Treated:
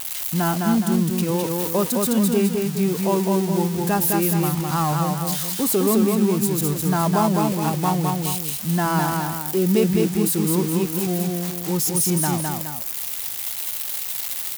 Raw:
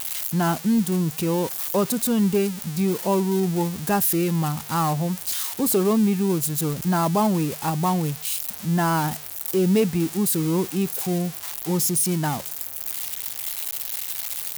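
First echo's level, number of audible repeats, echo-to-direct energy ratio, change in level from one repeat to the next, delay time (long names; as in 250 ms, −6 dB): −3.0 dB, 2, −2.0 dB, −6.5 dB, 209 ms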